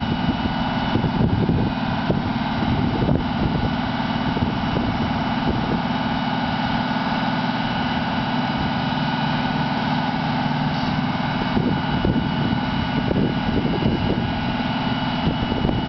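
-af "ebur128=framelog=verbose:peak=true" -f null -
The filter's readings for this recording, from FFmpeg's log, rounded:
Integrated loudness:
  I:         -21.8 LUFS
  Threshold: -31.8 LUFS
Loudness range:
  LRA:         0.8 LU
  Threshold: -41.8 LUFS
  LRA low:   -22.1 LUFS
  LRA high:  -21.3 LUFS
True peak:
  Peak:       -4.9 dBFS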